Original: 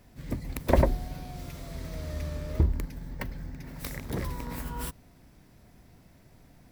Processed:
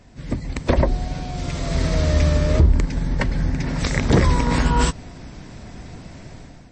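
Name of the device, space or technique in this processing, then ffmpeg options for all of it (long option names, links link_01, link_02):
low-bitrate web radio: -af "dynaudnorm=framelen=450:gausssize=3:maxgain=11dB,alimiter=limit=-13dB:level=0:latency=1:release=176,volume=8dB" -ar 24000 -c:a libmp3lame -b:a 32k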